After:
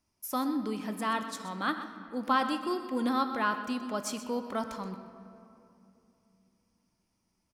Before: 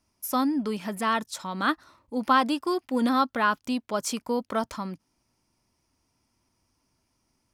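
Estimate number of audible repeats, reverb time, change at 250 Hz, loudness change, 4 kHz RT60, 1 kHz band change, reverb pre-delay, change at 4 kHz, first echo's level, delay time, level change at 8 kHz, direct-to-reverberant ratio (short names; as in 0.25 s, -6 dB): 1, 2.8 s, -5.0 dB, -5.5 dB, 1.7 s, -5.0 dB, 5 ms, -5.5 dB, -13.0 dB, 0.126 s, -5.5 dB, 7.5 dB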